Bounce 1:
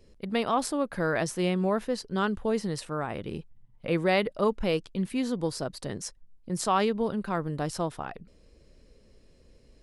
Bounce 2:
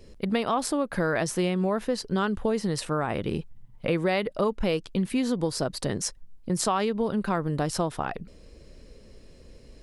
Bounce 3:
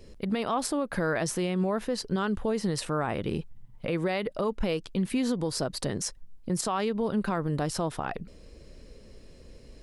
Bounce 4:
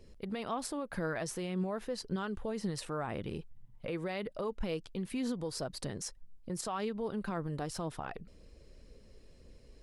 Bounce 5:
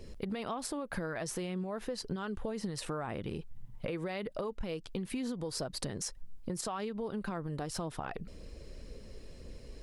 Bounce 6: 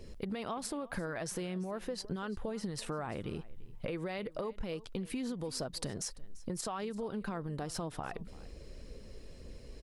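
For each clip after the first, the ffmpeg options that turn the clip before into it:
-af "acompressor=threshold=0.0282:ratio=4,volume=2.51"
-af "alimiter=limit=0.112:level=0:latency=1:release=74"
-af "aphaser=in_gain=1:out_gain=1:delay=2.7:decay=0.25:speed=1.9:type=triangular,volume=0.376"
-af "acompressor=threshold=0.00794:ratio=10,volume=2.66"
-af "aecho=1:1:341:0.0944,volume=0.891"

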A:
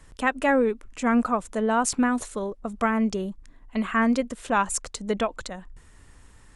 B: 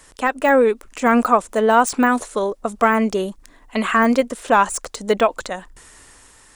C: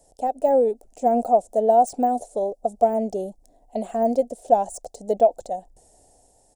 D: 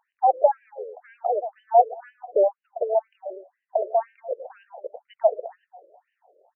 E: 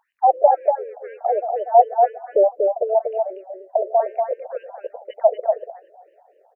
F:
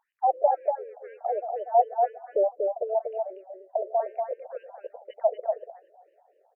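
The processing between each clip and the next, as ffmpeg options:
-af "dynaudnorm=f=140:g=9:m=1.58,bass=f=250:g=-13,treble=f=4000:g=6,deesser=0.9,volume=2.37"
-af "firequalizer=gain_entry='entry(350,0);entry(730,13);entry(1100,-24);entry(2000,-22);entry(5200,-5);entry(8200,-2)':delay=0.05:min_phase=1,volume=0.376"
-filter_complex "[0:a]alimiter=limit=0.224:level=0:latency=1:release=241,asplit=2[s0][s1];[s1]adelay=110,lowpass=f=2000:p=1,volume=0.158,asplit=2[s2][s3];[s3]adelay=110,lowpass=f=2000:p=1,volume=0.41,asplit=2[s4][s5];[s5]adelay=110,lowpass=f=2000:p=1,volume=0.41,asplit=2[s6][s7];[s7]adelay=110,lowpass=f=2000:p=1,volume=0.41[s8];[s0][s2][s4][s6][s8]amix=inputs=5:normalize=0,afftfilt=real='re*between(b*sr/1024,430*pow(2200/430,0.5+0.5*sin(2*PI*2*pts/sr))/1.41,430*pow(2200/430,0.5+0.5*sin(2*PI*2*pts/sr))*1.41)':imag='im*between(b*sr/1024,430*pow(2200/430,0.5+0.5*sin(2*PI*2*pts/sr))/1.41,430*pow(2200/430,0.5+0.5*sin(2*PI*2*pts/sr))*1.41)':win_size=1024:overlap=0.75,volume=2.24"
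-af "aecho=1:1:239:0.631,volume=1.5"
-af "volume=0.422" -ar 48000 -c:a libmp3lame -b:a 80k

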